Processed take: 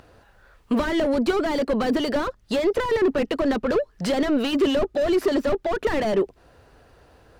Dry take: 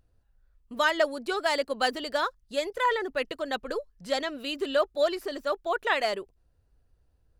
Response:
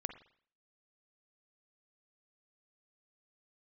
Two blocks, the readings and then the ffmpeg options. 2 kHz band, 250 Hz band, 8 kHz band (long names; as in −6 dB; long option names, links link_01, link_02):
−1.0 dB, +15.5 dB, +2.5 dB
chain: -filter_complex "[0:a]asplit=2[link_01][link_02];[link_02]highpass=frequency=720:poles=1,volume=33dB,asoftclip=type=tanh:threshold=-11dB[link_03];[link_01][link_03]amix=inputs=2:normalize=0,lowpass=frequency=1900:poles=1,volume=-6dB,acrossover=split=430[link_04][link_05];[link_05]acompressor=threshold=-35dB:ratio=4[link_06];[link_04][link_06]amix=inputs=2:normalize=0,volume=4.5dB"